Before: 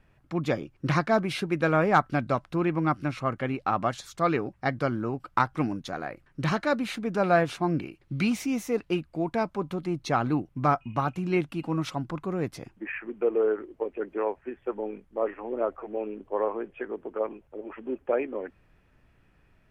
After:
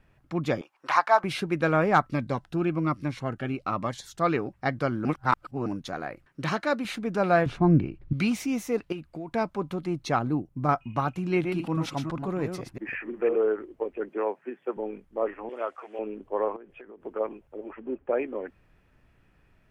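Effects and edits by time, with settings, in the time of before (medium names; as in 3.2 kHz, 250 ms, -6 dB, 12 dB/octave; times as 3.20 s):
0.61–1.24 s: resonant high-pass 890 Hz, resonance Q 3.3
2.06–4.20 s: Shepard-style phaser falling 1.2 Hz
5.05–5.66 s: reverse
6.27–6.85 s: high-pass 210 Hz 6 dB/octave
7.46–8.13 s: RIAA curve playback
8.92–9.34 s: compression 4:1, threshold -33 dBFS
10.19–10.69 s: peaking EQ 2.6 kHz -10.5 dB 2.9 oct
11.26–13.36 s: chunks repeated in reverse 169 ms, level -5.5 dB
14.09–14.77 s: steep high-pass 160 Hz
15.49–15.99 s: frequency weighting ITU-R 468
16.56–17.06 s: compression 12:1, threshold -42 dBFS
17.71–18.16 s: distance through air 290 m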